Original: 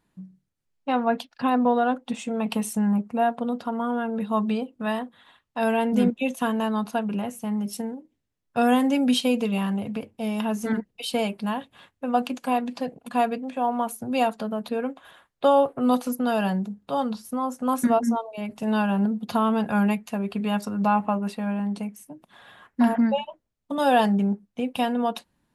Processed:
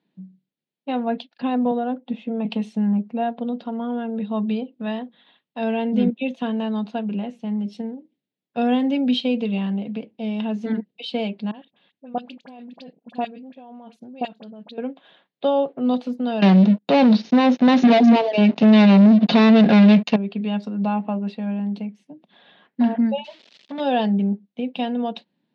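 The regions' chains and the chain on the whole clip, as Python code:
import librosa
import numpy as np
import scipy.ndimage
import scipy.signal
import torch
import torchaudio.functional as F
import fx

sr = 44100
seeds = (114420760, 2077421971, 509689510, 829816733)

y = fx.chain(x, sr, fx.spacing_loss(db_at_10k=24),
    fx.band_squash(depth_pct=40), at=(1.71, 2.45))
y = fx.chain(y, sr, fx.level_steps(step_db=20),
    fx.dispersion(late='highs', ms=41.0, hz=1700.0), at=(11.51, 14.78))
y = fx.chain(y, sr, fx.leveller(passes=5),
    fx.brickwall_lowpass(high_hz=6900.0),
    fx.notch(hz=3300.0, q=18.0), at=(16.42, 20.16))
y = fx.chain(y, sr, fx.crossing_spikes(level_db=-25.0),
    fx.lowpass(hz=5200.0, slope=12),
    fx.transformer_sat(knee_hz=1100.0), at=(23.24, 23.8))
y = scipy.signal.sosfilt(scipy.signal.cheby1(3, 1.0, [180.0, 3900.0], 'bandpass', fs=sr, output='sos'), y)
y = fx.peak_eq(y, sr, hz=1200.0, db=-12.0, octaves=1.2)
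y = y * 10.0 ** (2.5 / 20.0)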